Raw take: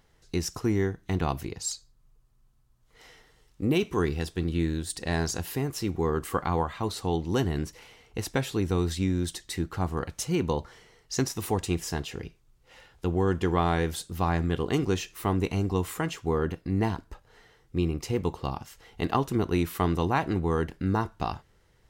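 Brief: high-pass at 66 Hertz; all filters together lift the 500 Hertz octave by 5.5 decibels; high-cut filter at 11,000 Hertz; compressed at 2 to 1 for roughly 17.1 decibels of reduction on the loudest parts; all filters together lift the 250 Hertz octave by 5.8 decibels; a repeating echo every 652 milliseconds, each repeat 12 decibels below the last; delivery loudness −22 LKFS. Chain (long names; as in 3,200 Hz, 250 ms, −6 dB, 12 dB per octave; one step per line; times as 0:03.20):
high-pass filter 66 Hz
low-pass filter 11,000 Hz
parametric band 250 Hz +6.5 dB
parametric band 500 Hz +4.5 dB
downward compressor 2 to 1, threshold −49 dBFS
repeating echo 652 ms, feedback 25%, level −12 dB
level +19 dB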